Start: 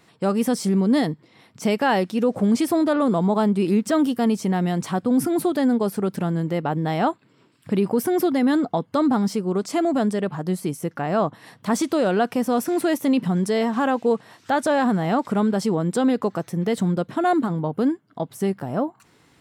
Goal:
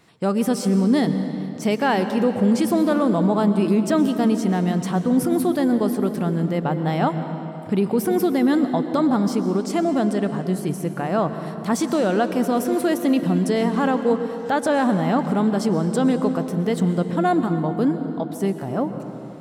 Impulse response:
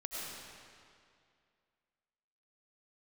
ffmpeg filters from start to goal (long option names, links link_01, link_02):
-filter_complex "[0:a]asplit=2[link_01][link_02];[link_02]lowshelf=frequency=280:gain=8.5[link_03];[1:a]atrim=start_sample=2205,asetrate=35280,aresample=44100[link_04];[link_03][link_04]afir=irnorm=-1:irlink=0,volume=-10dB[link_05];[link_01][link_05]amix=inputs=2:normalize=0,volume=-2dB"